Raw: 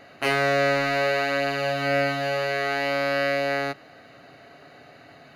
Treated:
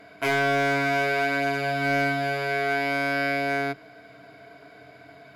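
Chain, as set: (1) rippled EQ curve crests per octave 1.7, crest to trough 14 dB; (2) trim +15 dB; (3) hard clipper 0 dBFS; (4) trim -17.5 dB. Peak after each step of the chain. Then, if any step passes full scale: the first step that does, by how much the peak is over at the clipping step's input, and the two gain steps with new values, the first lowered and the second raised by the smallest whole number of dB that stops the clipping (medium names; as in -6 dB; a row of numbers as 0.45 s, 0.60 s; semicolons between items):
-8.0 dBFS, +7.0 dBFS, 0.0 dBFS, -17.5 dBFS; step 2, 7.0 dB; step 2 +8 dB, step 4 -10.5 dB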